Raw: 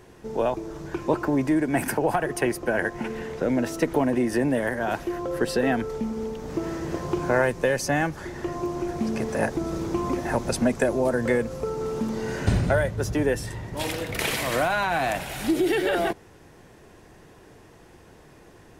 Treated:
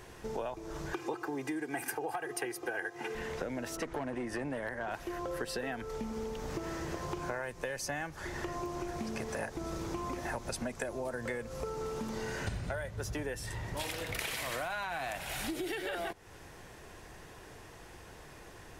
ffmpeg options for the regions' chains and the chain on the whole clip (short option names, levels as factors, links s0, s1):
-filter_complex "[0:a]asettb=1/sr,asplit=3[s0][s1][s2];[s0]atrim=end=0.934[s3];[s1]atrim=start=0.93:end=3.15,asetpts=PTS-STARTPTS,afade=t=in:d=0.004:c=qsin,afade=t=out:st=2.216:d=0.004:c=qsin,highpass=f=130:w=0.5412,highpass=f=130:w=1.3066,aecho=1:1:2.5:0.93,atrim=end_sample=97902[s4];[s2]atrim=start=3.146[s5];[s3][s4]acrossfade=d=0.004:c1=hsin:c2=qsin[s6];[s6][s5]acrossfade=d=0.004:c1=qsin:c2=hsin,asettb=1/sr,asplit=3[s7][s8][s9];[s7]atrim=end=3.774[s10];[s8]atrim=start=3.77:end=4.94,asetpts=PTS-STARTPTS,afade=t=in:d=0.004:c=qsin,afade=t=out:st=1.166:d=0.004:c=qsin,lowpass=10000,asoftclip=type=hard:threshold=0.133,adynamicequalizer=threshold=0.00631:dfrequency=2600:dqfactor=0.7:tfrequency=2600:tqfactor=0.7:attack=5:release=100:ratio=0.375:range=3:mode=cutabove:tftype=highshelf[s11];[s9]atrim=start=4.936[s12];[s10][s11]acrossfade=d=0.004:c1=hsin:c2=qsin[s13];[s13][s12]acrossfade=d=0.004:c1=qsin:c2=hsin,equalizer=f=240:w=0.48:g=-8,acompressor=threshold=0.0126:ratio=6,volume=1.41"